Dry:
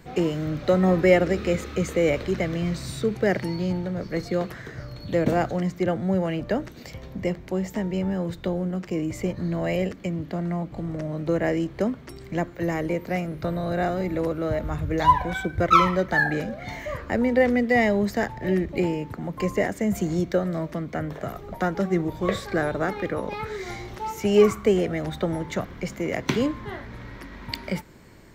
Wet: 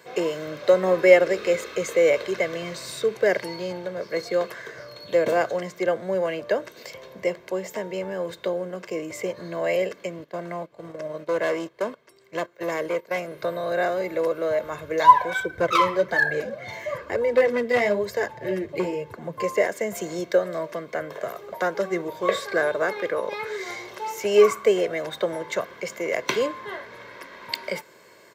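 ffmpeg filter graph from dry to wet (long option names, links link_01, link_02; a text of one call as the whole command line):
ffmpeg -i in.wav -filter_complex "[0:a]asettb=1/sr,asplit=3[link_01][link_02][link_03];[link_01]atrim=end=10.244[link_04];[link_02]atrim=start=10.24:end=13.19,asetpts=PTS-STARTPTS,afade=type=in:duration=0.004:curve=qsin,afade=type=out:start_time=2.946:duration=0.004:curve=qsin,agate=range=-13dB:threshold=-31dB:ratio=16:release=100:detection=peak,asoftclip=type=hard:threshold=-21dB[link_05];[link_03]atrim=start=13.186[link_06];[link_04][link_05]acrossfade=duration=0.004:curve1=hsin:curve2=qsin[link_07];[link_07][link_06]acrossfade=duration=0.004:curve1=qsin:curve2=hsin,asettb=1/sr,asplit=3[link_08][link_09][link_10];[link_08]atrim=end=15.404[link_11];[link_09]atrim=start=15.4:end=19.44,asetpts=PTS-STARTPTS,afade=type=in:duration=0.004:curve=qsin,afade=type=out:start_time=4.036:duration=0.004:curve=qsin,equalizer=frequency=86:width=0.51:gain=14,flanger=delay=1.8:depth=7.3:regen=-11:speed=1.1:shape=sinusoidal,asoftclip=type=hard:threshold=-13.5dB[link_12];[link_10]atrim=start=19.436[link_13];[link_11][link_12]acrossfade=duration=0.004:curve1=hsin:curve2=qsin[link_14];[link_14][link_13]acrossfade=duration=0.004:curve1=qsin:curve2=hsin,highpass=380,aecho=1:1:1.9:0.55,volume=2dB" out.wav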